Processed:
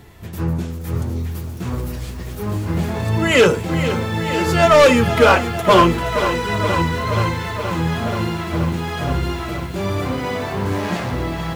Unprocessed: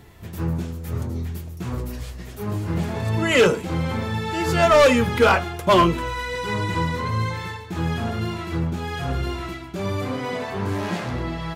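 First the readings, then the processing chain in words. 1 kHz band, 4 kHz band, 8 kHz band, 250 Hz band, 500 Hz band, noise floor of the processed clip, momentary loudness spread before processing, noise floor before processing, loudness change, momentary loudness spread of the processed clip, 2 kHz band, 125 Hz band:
+4.5 dB, +4.0 dB, +4.5 dB, +4.5 dB, +4.0 dB, -29 dBFS, 14 LU, -37 dBFS, +4.0 dB, 13 LU, +4.0 dB, +4.0 dB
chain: lo-fi delay 0.475 s, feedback 80%, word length 7-bit, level -11 dB; gain +3.5 dB

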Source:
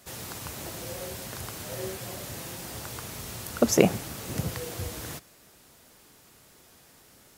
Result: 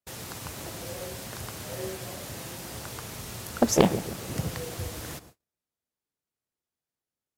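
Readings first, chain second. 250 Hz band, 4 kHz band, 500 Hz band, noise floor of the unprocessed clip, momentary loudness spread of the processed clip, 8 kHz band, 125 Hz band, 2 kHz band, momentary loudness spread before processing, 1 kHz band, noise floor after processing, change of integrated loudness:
0.0 dB, 0.0 dB, -0.5 dB, -57 dBFS, 14 LU, -1.0 dB, +0.5 dB, -1.0 dB, 14 LU, +3.0 dB, under -85 dBFS, -0.5 dB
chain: analogue delay 0.14 s, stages 1024, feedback 44%, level -13.5 dB; gate -49 dBFS, range -37 dB; Doppler distortion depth 0.4 ms

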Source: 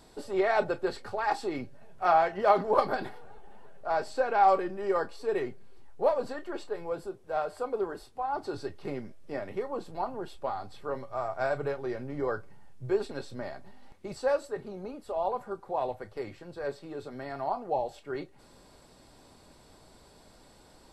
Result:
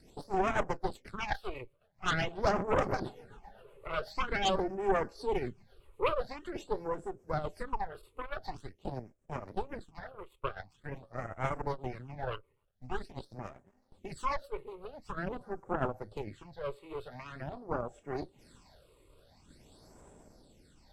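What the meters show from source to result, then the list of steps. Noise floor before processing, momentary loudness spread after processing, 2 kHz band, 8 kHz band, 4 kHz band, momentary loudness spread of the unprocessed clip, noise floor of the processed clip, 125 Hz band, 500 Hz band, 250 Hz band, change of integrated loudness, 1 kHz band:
-57 dBFS, 16 LU, -1.5 dB, n/a, +3.5 dB, 16 LU, -70 dBFS, +3.5 dB, -6.5 dB, -2.5 dB, -5.0 dB, -6.5 dB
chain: in parallel at 0 dB: compressor, threshold -41 dBFS, peak gain reduction 22 dB; on the sum: rotary speaker horn 8 Hz, later 0.7 Hz, at 15.78; added harmonics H 8 -9 dB, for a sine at -11.5 dBFS; phaser stages 8, 0.46 Hz, lowest notch 210–4300 Hz; gain -5.5 dB

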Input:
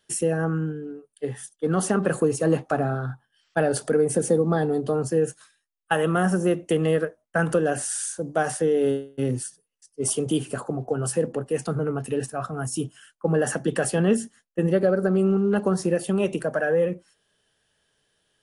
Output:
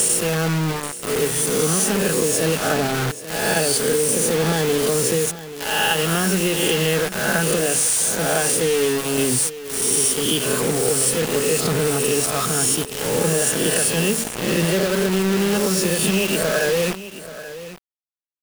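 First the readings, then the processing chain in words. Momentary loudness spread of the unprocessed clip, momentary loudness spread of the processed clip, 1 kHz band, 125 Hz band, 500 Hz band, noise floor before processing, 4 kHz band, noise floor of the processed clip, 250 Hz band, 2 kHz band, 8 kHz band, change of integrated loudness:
9 LU, 6 LU, +4.5 dB, +2.5 dB, +3.0 dB, -76 dBFS, +17.5 dB, -35 dBFS, +2.0 dB, +8.5 dB, +13.5 dB, +5.5 dB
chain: spectral swells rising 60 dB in 0.91 s; resonant high shelf 2000 Hz +8.5 dB, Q 1.5; comb 4.7 ms, depth 32%; de-hum 45.15 Hz, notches 5; dynamic EQ 660 Hz, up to -5 dB, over -37 dBFS, Q 4.4; compressor 12:1, threshold -22 dBFS, peak gain reduction 12.5 dB; bit-crush 5-bit; on a send: echo 0.832 s -14.5 dB; on the sum: gain +6 dB

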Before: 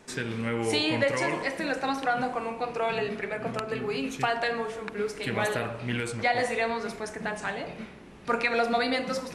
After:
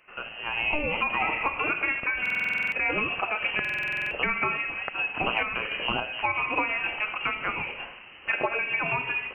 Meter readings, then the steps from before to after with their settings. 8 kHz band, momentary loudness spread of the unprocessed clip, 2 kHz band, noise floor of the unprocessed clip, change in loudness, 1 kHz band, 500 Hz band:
under -20 dB, 8 LU, +6.0 dB, -46 dBFS, +2.5 dB, -0.5 dB, -7.0 dB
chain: HPF 45 Hz; bell 150 Hz -9 dB 2.7 oct; inverted band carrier 3000 Hz; AGC gain up to 14.5 dB; random-step tremolo; dynamic EQ 1700 Hz, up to -7 dB, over -35 dBFS, Q 1.6; compressor 5:1, threshold -23 dBFS, peak gain reduction 9.5 dB; stuck buffer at 2.21/3.6, samples 2048, times 10

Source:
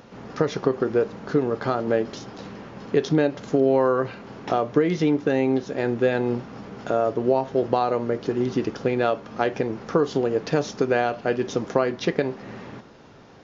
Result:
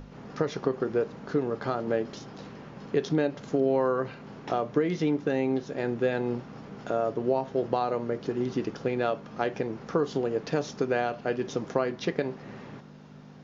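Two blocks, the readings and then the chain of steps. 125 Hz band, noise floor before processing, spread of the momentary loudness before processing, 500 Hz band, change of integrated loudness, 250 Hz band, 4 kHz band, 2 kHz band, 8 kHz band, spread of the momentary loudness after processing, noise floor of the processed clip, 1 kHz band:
-5.5 dB, -48 dBFS, 13 LU, -5.5 dB, -5.5 dB, -5.5 dB, -5.5 dB, -5.5 dB, n/a, 15 LU, -47 dBFS, -5.5 dB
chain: hum 50 Hz, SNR 12 dB; notches 50/100 Hz; gain -5.5 dB

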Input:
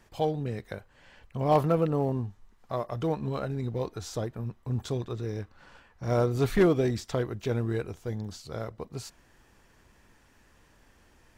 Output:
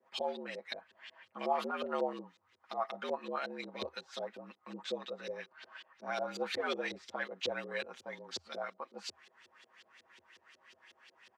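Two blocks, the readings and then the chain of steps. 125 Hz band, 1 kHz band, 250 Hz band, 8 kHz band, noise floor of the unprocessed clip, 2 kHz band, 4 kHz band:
under -25 dB, -5.0 dB, -16.0 dB, -7.5 dB, -62 dBFS, +1.0 dB, +2.5 dB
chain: differentiator; limiter -38.5 dBFS, peak gain reduction 11 dB; LFO low-pass saw up 5.5 Hz 320–4100 Hz; comb 6.9 ms, depth 85%; frequency shift +79 Hz; gain +11.5 dB

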